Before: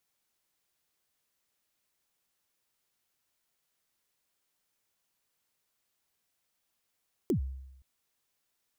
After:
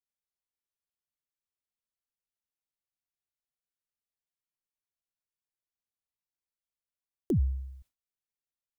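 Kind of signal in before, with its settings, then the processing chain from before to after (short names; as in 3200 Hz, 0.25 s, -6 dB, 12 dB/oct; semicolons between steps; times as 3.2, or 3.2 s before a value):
kick drum length 0.52 s, from 420 Hz, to 66 Hz, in 0.101 s, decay 0.91 s, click on, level -22.5 dB
low shelf 120 Hz +11.5 dB; gate with hold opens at -46 dBFS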